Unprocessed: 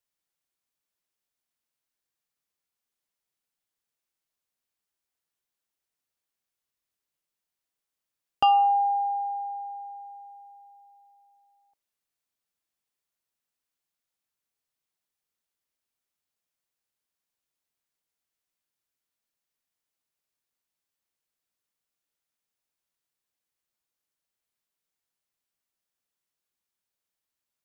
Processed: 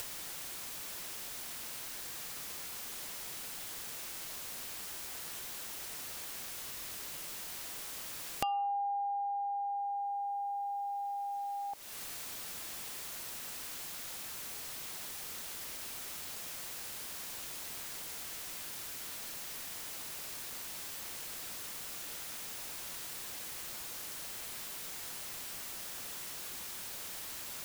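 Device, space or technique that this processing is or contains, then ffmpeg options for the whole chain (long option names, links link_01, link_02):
upward and downward compression: -af "acompressor=mode=upward:threshold=-29dB:ratio=2.5,acompressor=threshold=-49dB:ratio=5,volume=12dB"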